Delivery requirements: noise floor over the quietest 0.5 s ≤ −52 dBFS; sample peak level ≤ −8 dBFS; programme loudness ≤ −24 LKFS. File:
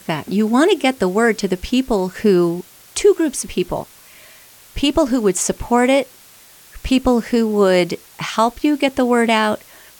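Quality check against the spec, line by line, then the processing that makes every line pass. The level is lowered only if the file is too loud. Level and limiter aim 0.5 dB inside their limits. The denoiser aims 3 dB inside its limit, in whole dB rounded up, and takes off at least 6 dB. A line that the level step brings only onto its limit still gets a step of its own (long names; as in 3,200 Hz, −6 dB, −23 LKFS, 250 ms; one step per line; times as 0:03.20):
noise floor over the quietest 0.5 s −45 dBFS: out of spec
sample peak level −4.0 dBFS: out of spec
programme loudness −17.5 LKFS: out of spec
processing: broadband denoise 6 dB, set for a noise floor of −45 dBFS
level −7 dB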